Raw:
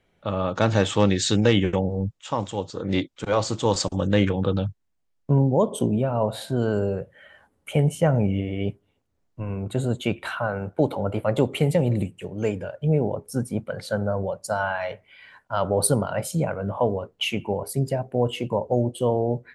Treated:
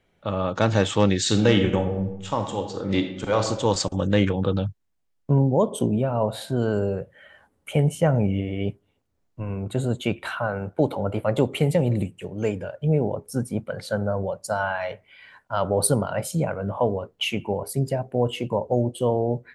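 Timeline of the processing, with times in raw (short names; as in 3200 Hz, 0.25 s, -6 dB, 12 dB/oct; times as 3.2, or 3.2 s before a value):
1.19–3.46 reverb throw, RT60 0.89 s, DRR 5.5 dB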